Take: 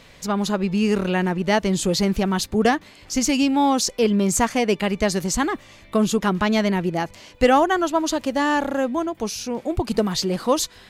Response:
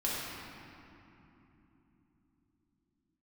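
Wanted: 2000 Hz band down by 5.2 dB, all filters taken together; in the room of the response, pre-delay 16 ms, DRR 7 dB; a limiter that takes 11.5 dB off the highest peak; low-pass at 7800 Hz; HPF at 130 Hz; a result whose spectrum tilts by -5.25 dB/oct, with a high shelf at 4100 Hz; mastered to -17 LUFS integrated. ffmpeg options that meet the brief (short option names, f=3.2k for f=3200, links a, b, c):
-filter_complex "[0:a]highpass=130,lowpass=7.8k,equalizer=f=2k:t=o:g=-5.5,highshelf=f=4.1k:g=-5,alimiter=limit=-17dB:level=0:latency=1,asplit=2[a][b];[1:a]atrim=start_sample=2205,adelay=16[c];[b][c]afir=irnorm=-1:irlink=0,volume=-14dB[d];[a][d]amix=inputs=2:normalize=0,volume=8dB"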